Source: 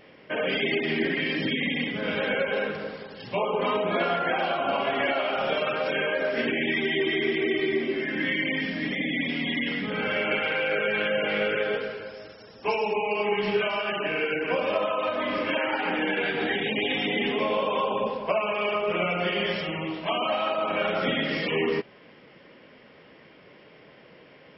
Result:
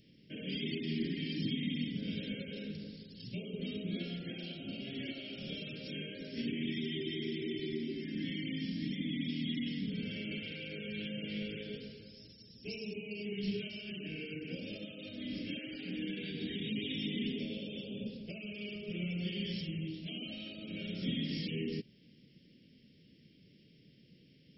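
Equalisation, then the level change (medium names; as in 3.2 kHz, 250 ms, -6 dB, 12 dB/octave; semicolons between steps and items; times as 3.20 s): Chebyshev band-stop 200–4800 Hz, order 2; -2.0 dB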